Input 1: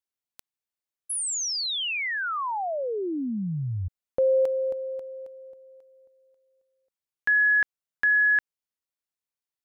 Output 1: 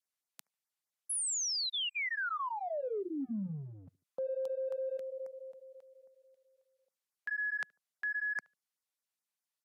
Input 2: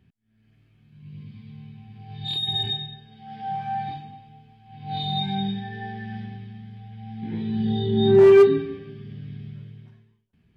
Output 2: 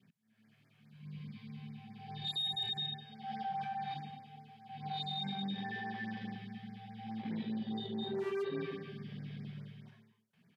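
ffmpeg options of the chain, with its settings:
-filter_complex "[0:a]equalizer=f=330:w=1.7:g=-10,areverse,acompressor=threshold=0.02:ratio=20:attack=1.9:release=22:knee=1:detection=rms,areverse,highpass=f=170:w=0.5412,highpass=f=170:w=1.3066,asplit=2[s0][s1];[s1]adelay=73,lowpass=f=910:p=1,volume=0.0708,asplit=2[s2][s3];[s3]adelay=73,lowpass=f=910:p=1,volume=0.36[s4];[s2][s4]amix=inputs=2:normalize=0[s5];[s0][s5]amix=inputs=2:normalize=0,adynamicequalizer=threshold=0.00251:dfrequency=830:dqfactor=3.2:tfrequency=830:tqfactor=3.2:attack=5:release=100:ratio=0.375:range=2.5:mode=cutabove:tftype=bell,aresample=32000,aresample=44100,afftfilt=real='re*(1-between(b*sr/1024,230*pow(3500/230,0.5+0.5*sin(2*PI*4.8*pts/sr))/1.41,230*pow(3500/230,0.5+0.5*sin(2*PI*4.8*pts/sr))*1.41))':imag='im*(1-between(b*sr/1024,230*pow(3500/230,0.5+0.5*sin(2*PI*4.8*pts/sr))/1.41,230*pow(3500/230,0.5+0.5*sin(2*PI*4.8*pts/sr))*1.41))':win_size=1024:overlap=0.75,volume=1.19"

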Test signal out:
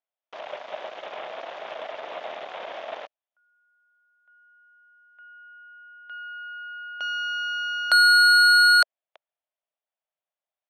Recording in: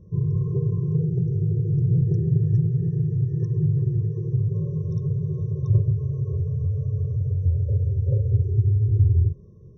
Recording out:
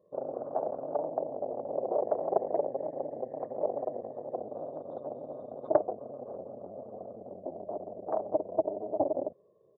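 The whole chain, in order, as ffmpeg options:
-af "aresample=8000,aresample=44100,aeval=exprs='0.355*(cos(1*acos(clip(val(0)/0.355,-1,1)))-cos(1*PI/2))+0.178*(cos(3*acos(clip(val(0)/0.355,-1,1)))-cos(3*PI/2))+0.0282*(cos(8*acos(clip(val(0)/0.355,-1,1)))-cos(8*PI/2))':c=same,highpass=f=630:t=q:w=4.9"

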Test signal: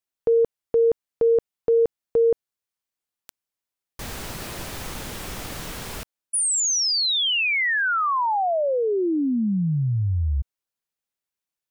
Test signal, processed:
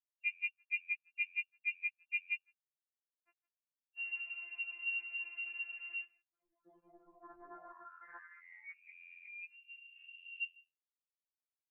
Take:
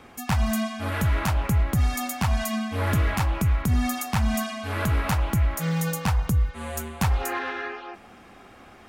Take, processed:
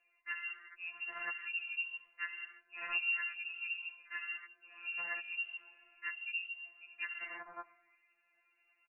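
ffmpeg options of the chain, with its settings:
-filter_complex "[0:a]asplit=2[s0][s1];[s1]aecho=0:1:161:0.106[s2];[s0][s2]amix=inputs=2:normalize=0,afftfilt=real='hypot(re,im)*cos(PI*b)':imag='0':win_size=512:overlap=0.75,adynamicequalizer=threshold=0.00631:dfrequency=540:dqfactor=1.6:tfrequency=540:tqfactor=1.6:attack=5:release=100:ratio=0.4:range=2:mode=cutabove:tftype=bell,afwtdn=0.0316,lowpass=f=2400:t=q:w=0.5098,lowpass=f=2400:t=q:w=0.6013,lowpass=f=2400:t=q:w=0.9,lowpass=f=2400:t=q:w=2.563,afreqshift=-2800,lowshelf=f=310:g=-4,crystalizer=i=0.5:c=0,afftfilt=real='re*2.83*eq(mod(b,8),0)':imag='im*2.83*eq(mod(b,8),0)':win_size=2048:overlap=0.75,volume=1.5"

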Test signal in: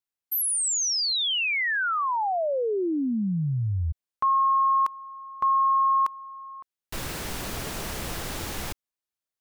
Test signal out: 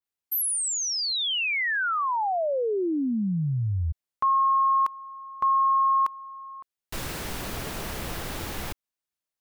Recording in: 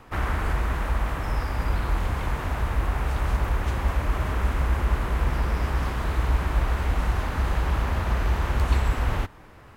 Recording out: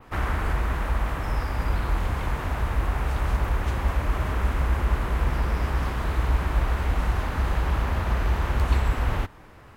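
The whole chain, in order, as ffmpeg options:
-af "adynamicequalizer=threshold=0.00631:dfrequency=7100:dqfactor=0.75:tfrequency=7100:tqfactor=0.75:attack=5:release=100:ratio=0.375:range=2:mode=cutabove:tftype=bell"

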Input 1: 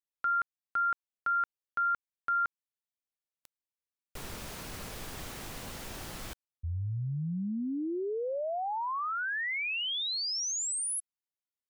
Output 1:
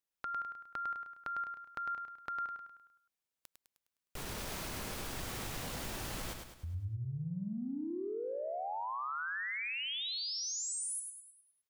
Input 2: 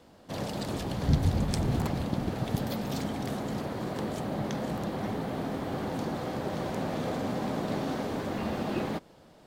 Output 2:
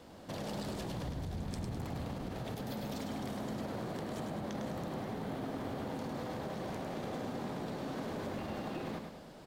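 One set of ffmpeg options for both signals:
-filter_complex "[0:a]acompressor=threshold=0.00891:ratio=12:attack=8.7:release=39:detection=rms,asplit=2[s0][s1];[s1]aecho=0:1:103|206|309|412|515|618:0.531|0.25|0.117|0.0551|0.0259|0.0122[s2];[s0][s2]amix=inputs=2:normalize=0,volume=1.26"

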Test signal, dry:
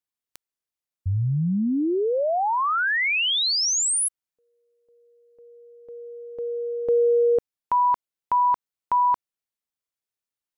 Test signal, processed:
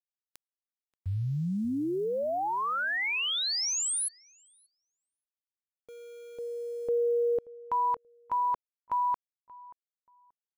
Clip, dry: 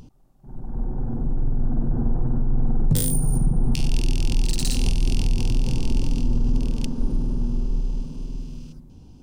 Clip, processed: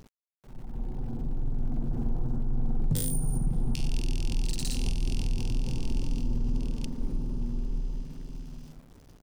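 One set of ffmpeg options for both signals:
-filter_complex "[0:a]aeval=exprs='val(0)*gte(abs(val(0)),0.00708)':c=same,asplit=2[s0][s1];[s1]adelay=581,lowpass=f=1900:p=1,volume=0.106,asplit=2[s2][s3];[s3]adelay=581,lowpass=f=1900:p=1,volume=0.2[s4];[s0][s2][s4]amix=inputs=3:normalize=0,volume=0.422"

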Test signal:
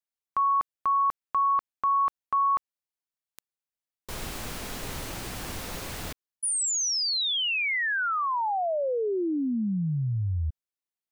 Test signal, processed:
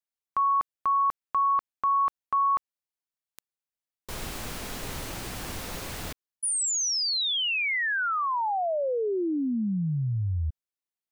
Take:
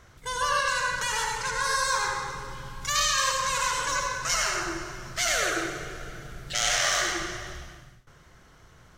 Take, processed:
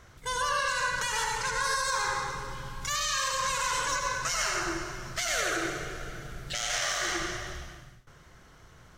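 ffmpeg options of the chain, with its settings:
-af "alimiter=limit=0.112:level=0:latency=1:release=90"

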